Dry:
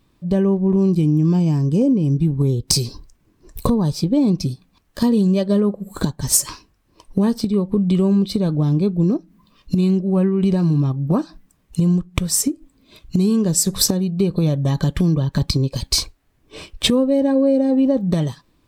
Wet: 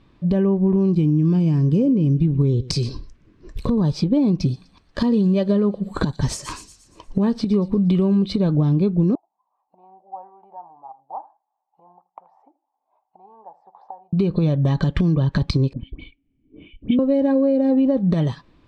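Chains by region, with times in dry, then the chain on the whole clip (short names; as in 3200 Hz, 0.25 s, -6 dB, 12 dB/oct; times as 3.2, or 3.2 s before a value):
1.1–3.84 bell 820 Hz -7 dB 0.67 oct + echo 0.121 s -21.5 dB
4.42–8.3 notch 5200 Hz, Q 27 + thin delay 0.117 s, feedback 48%, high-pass 5000 Hz, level -10.5 dB
9.15–14.13 Butterworth band-pass 820 Hz, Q 5.3 + echo 80 ms -19.5 dB
15.73–16.99 vocal tract filter i + air absorption 99 m + dispersion highs, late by 83 ms, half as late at 1300 Hz
whole clip: compressor, threshold -20 dBFS; LPF 3500 Hz 12 dB/oct; maximiser +13.5 dB; gain -8 dB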